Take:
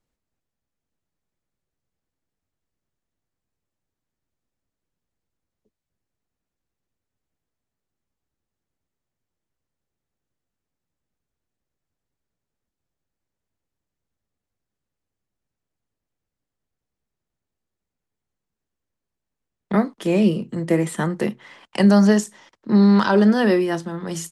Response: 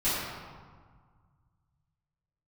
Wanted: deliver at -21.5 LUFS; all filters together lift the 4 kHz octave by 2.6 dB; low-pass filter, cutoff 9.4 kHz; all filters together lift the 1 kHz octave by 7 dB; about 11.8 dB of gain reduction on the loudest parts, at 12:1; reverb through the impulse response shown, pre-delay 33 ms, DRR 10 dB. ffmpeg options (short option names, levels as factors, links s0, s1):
-filter_complex "[0:a]lowpass=9400,equalizer=f=1000:t=o:g=8.5,equalizer=f=4000:t=o:g=3,acompressor=threshold=0.0794:ratio=12,asplit=2[s0][s1];[1:a]atrim=start_sample=2205,adelay=33[s2];[s1][s2]afir=irnorm=-1:irlink=0,volume=0.0841[s3];[s0][s3]amix=inputs=2:normalize=0,volume=2"